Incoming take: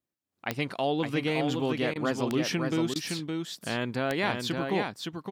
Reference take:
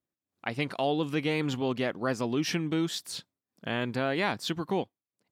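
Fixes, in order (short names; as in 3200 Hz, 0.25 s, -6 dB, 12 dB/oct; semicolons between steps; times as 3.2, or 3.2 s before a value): de-click; interpolate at 1.94/2.94, 15 ms; inverse comb 0.565 s -4.5 dB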